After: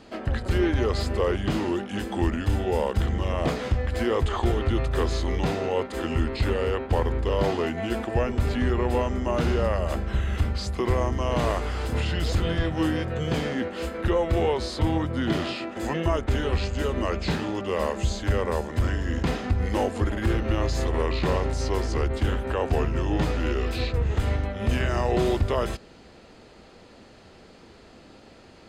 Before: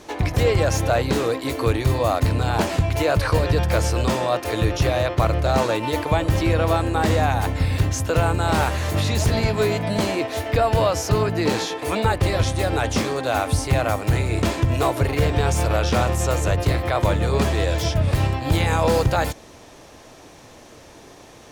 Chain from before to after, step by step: high shelf 9700 Hz -8 dB; notch 7500 Hz, Q 12; varispeed -25%; gain -4.5 dB

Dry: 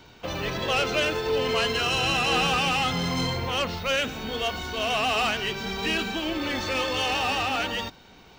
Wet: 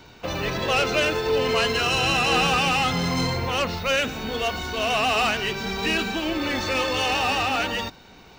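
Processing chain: notch 3200 Hz, Q 13; gain +3 dB

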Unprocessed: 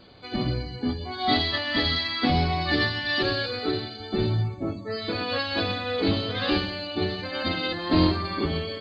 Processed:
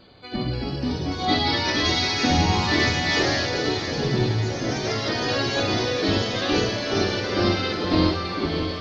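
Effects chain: echoes that change speed 0.316 s, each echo +2 st, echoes 3; diffused feedback echo 0.609 s, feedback 54%, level -8.5 dB

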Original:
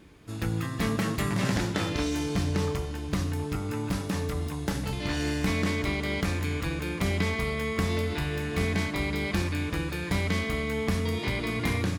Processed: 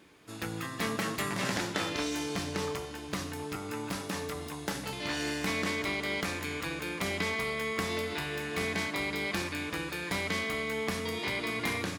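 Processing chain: HPF 460 Hz 6 dB/oct

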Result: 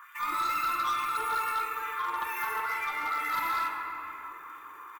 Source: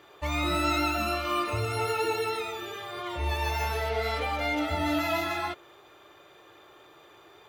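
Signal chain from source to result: LFO high-pass sine 1.5 Hz 460–2500 Hz; in parallel at +1.5 dB: compressor, threshold -40 dBFS, peak gain reduction 18.5 dB; on the sum: EQ curve 160 Hz 0 dB, 450 Hz -11 dB, 660 Hz -28 dB, 1000 Hz +8 dB, 2200 Hz -7 dB, 4300 Hz -28 dB, 7600 Hz -13 dB, 14000 Hz -8 dB; on a send: echo 0.244 s -16 dB; on the sum: crackle 53/s -56 dBFS; tempo 1.5×; pre-emphasis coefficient 0.8; soft clip -34 dBFS, distortion -11 dB; shoebox room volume 170 m³, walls hard, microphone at 0.55 m; hard clip -33 dBFS, distortion -18 dB; gain +8 dB

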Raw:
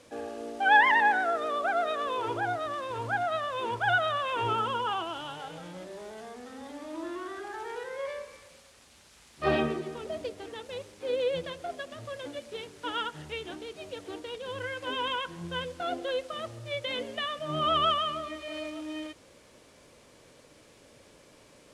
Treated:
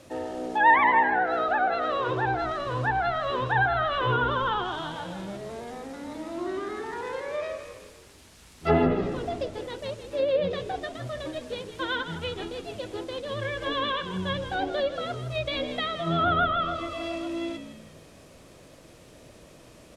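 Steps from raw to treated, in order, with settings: treble ducked by the level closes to 1700 Hz, closed at -23 dBFS; low shelf 270 Hz +8.5 dB; frequency-shifting echo 0.174 s, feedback 46%, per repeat -54 Hz, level -10.5 dB; speed mistake 44.1 kHz file played as 48 kHz; gain +2.5 dB

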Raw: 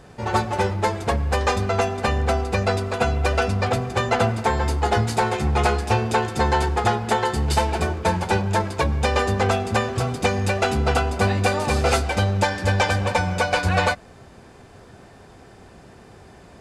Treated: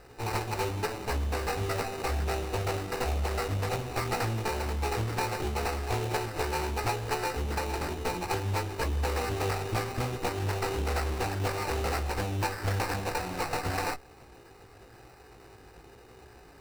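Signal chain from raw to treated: minimum comb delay 2.4 ms; compressor 2.5:1, threshold -24 dBFS, peak gain reduction 6.5 dB; chorus 0.99 Hz, delay 16 ms, depth 2.8 ms; sample-rate reducer 3300 Hz, jitter 0%; Doppler distortion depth 0.3 ms; gain -1.5 dB

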